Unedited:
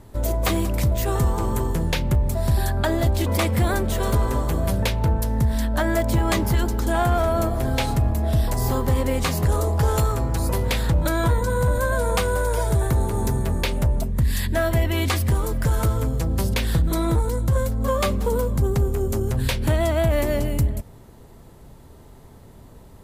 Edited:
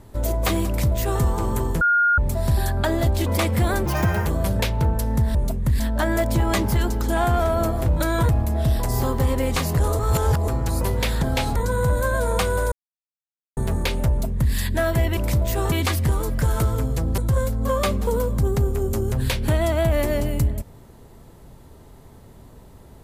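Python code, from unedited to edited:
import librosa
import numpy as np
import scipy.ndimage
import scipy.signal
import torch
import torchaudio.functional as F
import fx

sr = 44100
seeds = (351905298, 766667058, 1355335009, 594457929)

y = fx.edit(x, sr, fx.duplicate(start_s=0.67, length_s=0.55, to_s=14.95),
    fx.bleep(start_s=1.81, length_s=0.37, hz=1420.0, db=-14.5),
    fx.speed_span(start_s=3.86, length_s=0.63, speed=1.58),
    fx.swap(start_s=7.64, length_s=0.33, other_s=10.91, other_length_s=0.43),
    fx.reverse_span(start_s=9.67, length_s=0.49),
    fx.silence(start_s=12.5, length_s=0.85),
    fx.duplicate(start_s=13.87, length_s=0.45, to_s=5.58),
    fx.cut(start_s=16.41, length_s=0.96), tone=tone)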